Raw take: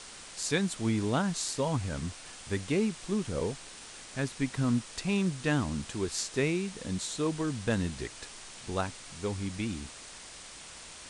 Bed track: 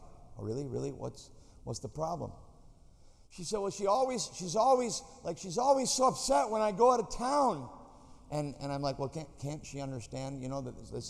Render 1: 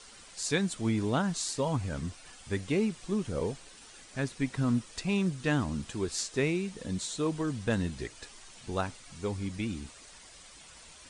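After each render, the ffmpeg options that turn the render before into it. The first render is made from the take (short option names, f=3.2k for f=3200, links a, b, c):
-af "afftdn=nr=9:nf=-48"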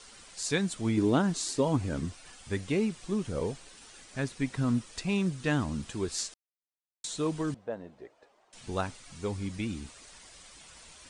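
-filter_complex "[0:a]asettb=1/sr,asplit=3[a][b][c];[a]atrim=end=0.974[d];[b]atrim=start=0.97:end=2.05,asetpts=PTS-STARTPTS,afade=t=in:d=0.004:c=qsin,afade=t=out:st=1.076:d=0.004:c=qsin,equalizer=f=320:w=1.5:g=9[e];[c]atrim=start=2.046[f];[d][e]acrossfade=d=0.004:c1=hsin:c2=qsin[g];[g][f]acrossfade=d=0.004:c1=qsin:c2=hsin,asettb=1/sr,asplit=3[h][i][j];[h]atrim=end=7.544[k];[i]atrim=start=7.54:end=8.53,asetpts=PTS-STARTPTS,afade=t=in:d=0.004:c=qsin,afade=t=out:st=0.986:d=0.004:c=qsin,bandpass=f=620:t=q:w=2.2[l];[j]atrim=start=8.526[m];[k][l]acrossfade=d=0.004:c1=hsin:c2=qsin[n];[n][m]acrossfade=d=0.004:c1=qsin:c2=hsin,asplit=3[o][p][q];[o]atrim=end=6.34,asetpts=PTS-STARTPTS,afade=t=out:st=6.336:d=0.004:c=hsin[r];[p]atrim=start=6.34:end=7.04,asetpts=PTS-STARTPTS,volume=0[s];[q]atrim=start=7.04,asetpts=PTS-STARTPTS,afade=t=in:d=0.004:c=hsin[t];[r][s][t]concat=n=3:v=0:a=1"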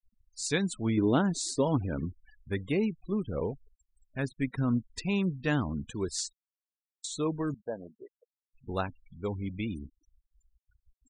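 -af "afftfilt=real='re*gte(hypot(re,im),0.01)':imag='im*gte(hypot(re,im),0.01)':win_size=1024:overlap=0.75"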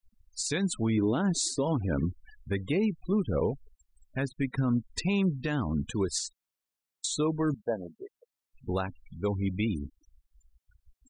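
-af "alimiter=level_in=0.5dB:limit=-24dB:level=0:latency=1:release=205,volume=-0.5dB,acontrast=44"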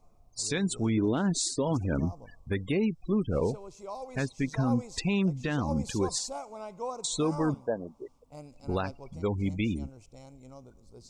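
-filter_complex "[1:a]volume=-11dB[a];[0:a][a]amix=inputs=2:normalize=0"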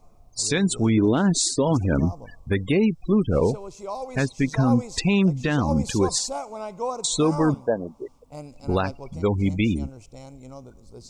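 -af "volume=7.5dB"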